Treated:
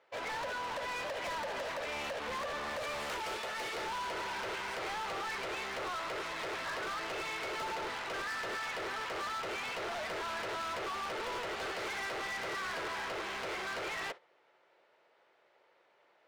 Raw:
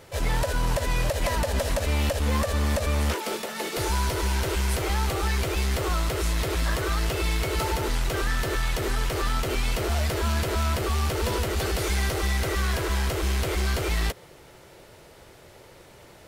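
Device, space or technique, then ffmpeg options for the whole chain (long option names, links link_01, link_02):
walkie-talkie: -filter_complex "[0:a]asettb=1/sr,asplit=3[link_01][link_02][link_03];[link_01]atrim=end=2.774[link_04];[link_02]atrim=start=2.77:end=3.76,asetpts=PTS-STARTPTS,afade=type=in:duration=0.004:curve=qsin,afade=type=out:start_time=0.986:duration=0.004:curve=qsin,aemphasis=mode=production:type=50fm[link_05];[link_03]atrim=start=3.756[link_06];[link_04][link_05]acrossfade=duration=0.004:curve1=hsin:curve2=qsin[link_07];[link_07][link_06]acrossfade=duration=0.004:curve1=qsin:curve2=hsin,highpass=600,lowpass=2600,asoftclip=type=hard:threshold=-36dB,agate=range=-14dB:threshold=-45dB:ratio=16:detection=peak"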